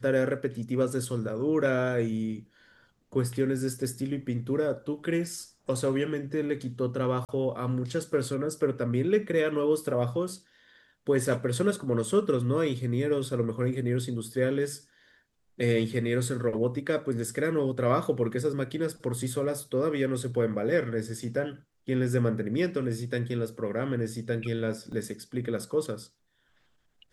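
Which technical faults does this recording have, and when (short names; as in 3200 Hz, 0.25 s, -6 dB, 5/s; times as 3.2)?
7.25–7.29 gap 38 ms
24.92 gap 3.3 ms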